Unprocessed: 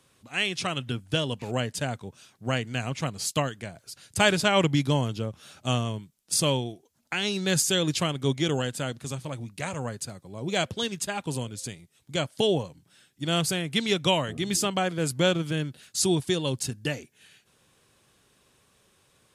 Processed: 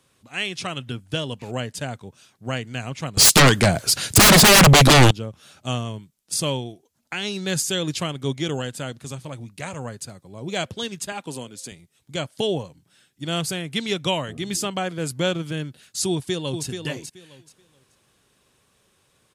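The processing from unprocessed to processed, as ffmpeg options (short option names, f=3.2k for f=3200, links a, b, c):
-filter_complex "[0:a]asettb=1/sr,asplit=3[a][b][c];[a]atrim=end=3.174[d];[b]atrim=start=3.17:end=5.11,asetpts=PTS-STARTPTS,afade=t=in:d=0.004:c=qsin,afade=t=out:st=1.936:d=0.004:c=qsin,aeval=exprs='0.398*sin(PI/2*10*val(0)/0.398)':c=same[e];[c]atrim=start=5.106[f];[d][e]acrossfade=d=0.004:c1=hsin:c2=qsin[g];[g][f]acrossfade=d=0.004:c1=qsin:c2=hsin,asettb=1/sr,asplit=3[h][i][j];[h]atrim=end=11.124[k];[i]atrim=start=11.12:end=11.72,asetpts=PTS-STARTPTS,afade=t=in:d=0.004:c=qsin,afade=t=out:st=0.596:d=0.004:c=qsin,highpass=190[l];[j]atrim=start=11.716[m];[k][l]acrossfade=d=0.004:c1=hsin:c2=qsin[n];[n][m]acrossfade=d=0.004:c1=qsin:c2=hsin,asplit=2[o][p];[p]afade=t=in:st=16.1:d=0.01,afade=t=out:st=16.66:d=0.01,aecho=0:1:430|860|1290:0.446684|0.0893367|0.0178673[q];[o][q]amix=inputs=2:normalize=0"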